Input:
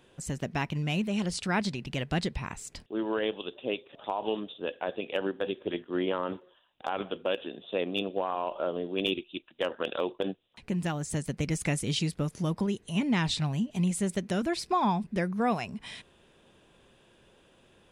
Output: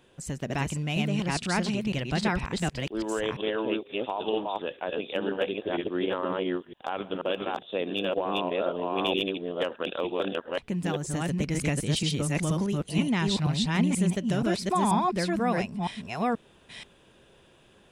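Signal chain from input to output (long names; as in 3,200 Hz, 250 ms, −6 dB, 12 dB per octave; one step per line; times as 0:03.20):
delay that plays each chunk backwards 481 ms, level 0 dB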